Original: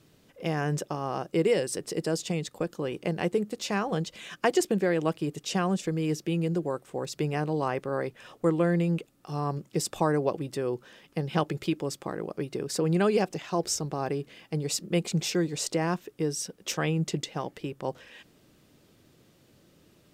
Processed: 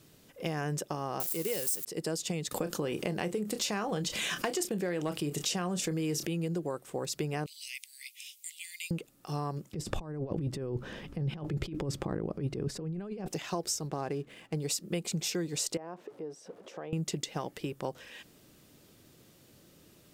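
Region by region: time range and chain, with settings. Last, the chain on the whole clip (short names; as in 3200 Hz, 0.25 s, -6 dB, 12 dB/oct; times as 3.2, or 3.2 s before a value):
1.2–1.85 switching spikes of -25.5 dBFS + high shelf 4800 Hz +8.5 dB
2.51–6.27 doubler 28 ms -13.5 dB + hard clip -16 dBFS + fast leveller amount 50%
7.46–8.91 steep high-pass 2100 Hz 96 dB/oct + high shelf 4000 Hz +9.5 dB
9.73–13.28 negative-ratio compressor -38 dBFS + RIAA curve playback
13.87–14.57 median filter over 9 samples + high shelf 11000 Hz -11.5 dB
15.77–16.93 zero-crossing step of -44 dBFS + compressor, threshold -32 dBFS + band-pass 580 Hz, Q 1.3
whole clip: high shelf 6200 Hz +8.5 dB; compressor, threshold -30 dBFS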